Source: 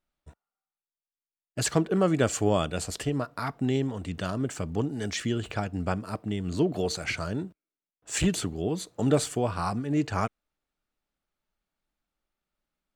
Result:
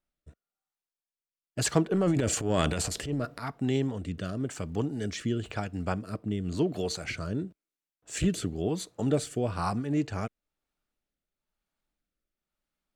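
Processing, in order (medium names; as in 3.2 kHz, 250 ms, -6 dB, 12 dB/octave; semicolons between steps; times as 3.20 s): rotary cabinet horn 1 Hz; 1.92–3.43 s: transient shaper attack -9 dB, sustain +10 dB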